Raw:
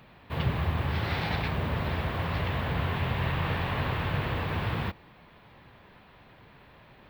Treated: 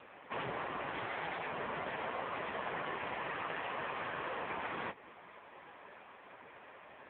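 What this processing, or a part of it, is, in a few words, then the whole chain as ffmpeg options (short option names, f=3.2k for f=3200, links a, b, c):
voicemail: -af "highpass=370,lowpass=2.7k,acompressor=threshold=-39dB:ratio=8,volume=6.5dB" -ar 8000 -c:a libopencore_amrnb -b:a 5900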